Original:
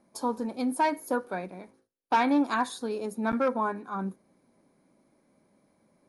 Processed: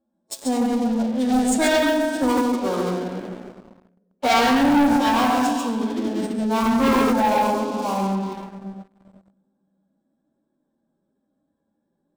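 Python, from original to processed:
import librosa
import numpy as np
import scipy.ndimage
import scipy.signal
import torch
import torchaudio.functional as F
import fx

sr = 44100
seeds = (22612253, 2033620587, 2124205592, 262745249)

p1 = fx.wiener(x, sr, points=15)
p2 = fx.stretch_vocoder(p1, sr, factor=2.0)
p3 = fx.low_shelf(p2, sr, hz=360.0, db=-4.0)
p4 = p3 + fx.echo_single(p3, sr, ms=139, db=-3.0, dry=0)
p5 = fx.room_shoebox(p4, sr, seeds[0], volume_m3=3300.0, walls='mixed', distance_m=2.3)
p6 = fx.clip_asym(p5, sr, top_db=-21.0, bottom_db=-10.0)
p7 = p5 + (p6 * 10.0 ** (-7.0 / 20.0))
p8 = fx.leveller(p7, sr, passes=3)
p9 = fx.bass_treble(p8, sr, bass_db=-1, treble_db=10)
p10 = fx.formant_shift(p9, sr, semitones=-4)
y = p10 * 10.0 ** (-6.0 / 20.0)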